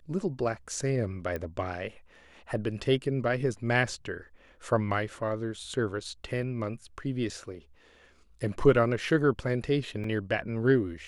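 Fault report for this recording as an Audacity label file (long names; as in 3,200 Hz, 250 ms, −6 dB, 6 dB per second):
1.360000	1.360000	click −21 dBFS
10.040000	10.040000	drop-out 3.2 ms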